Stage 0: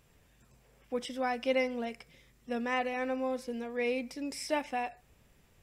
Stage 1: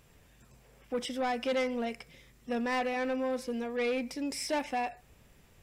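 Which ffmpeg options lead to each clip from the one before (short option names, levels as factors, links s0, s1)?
-af "asoftclip=type=tanh:threshold=0.0335,volume=1.58"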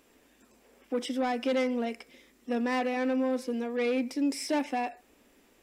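-af "lowshelf=f=190:t=q:w=3:g=-12"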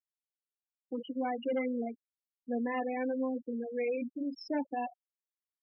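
-af "flanger=delay=8.7:depth=2:regen=-59:speed=1.2:shape=sinusoidal,afftfilt=real='re*gte(hypot(re,im),0.0355)':imag='im*gte(hypot(re,im),0.0355)':win_size=1024:overlap=0.75"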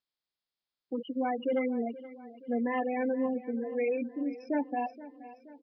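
-af "aecho=1:1:475|950|1425|1900|2375:0.141|0.0777|0.0427|0.0235|0.0129,volume=1.41" -ar 11025 -c:a nellymoser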